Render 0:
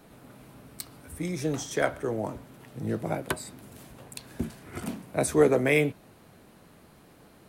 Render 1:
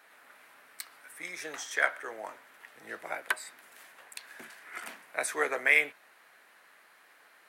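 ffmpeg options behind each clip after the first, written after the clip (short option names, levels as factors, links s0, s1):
-af "highpass=770,equalizer=f=1800:t=o:w=1:g=11.5,volume=0.631"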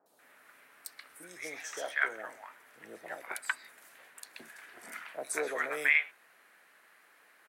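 -filter_complex "[0:a]acrossover=split=860|4100[s0][s1][s2];[s2]adelay=60[s3];[s1]adelay=190[s4];[s0][s4][s3]amix=inputs=3:normalize=0,volume=0.841"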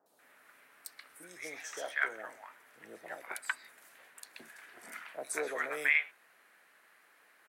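-af "asoftclip=type=hard:threshold=0.251,volume=0.794"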